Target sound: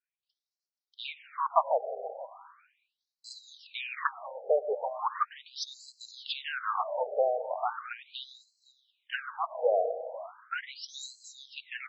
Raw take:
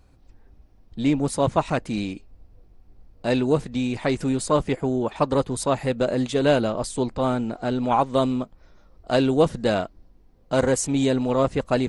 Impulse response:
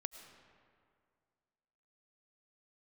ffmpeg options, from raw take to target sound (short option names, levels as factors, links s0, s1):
-filter_complex "[0:a]agate=range=0.0224:threshold=0.01:ratio=3:detection=peak,aecho=1:1:479:0.0891,asplit=2[s0][s1];[1:a]atrim=start_sample=2205[s2];[s1][s2]afir=irnorm=-1:irlink=0,volume=1.19[s3];[s0][s3]amix=inputs=2:normalize=0,acompressor=threshold=0.158:ratio=10,equalizer=f=1200:w=2.4:g=8,afftfilt=real='re*between(b*sr/1024,560*pow(5700/560,0.5+0.5*sin(2*PI*0.38*pts/sr))/1.41,560*pow(5700/560,0.5+0.5*sin(2*PI*0.38*pts/sr))*1.41)':imag='im*between(b*sr/1024,560*pow(5700/560,0.5+0.5*sin(2*PI*0.38*pts/sr))/1.41,560*pow(5700/560,0.5+0.5*sin(2*PI*0.38*pts/sr))*1.41)':win_size=1024:overlap=0.75,volume=0.708"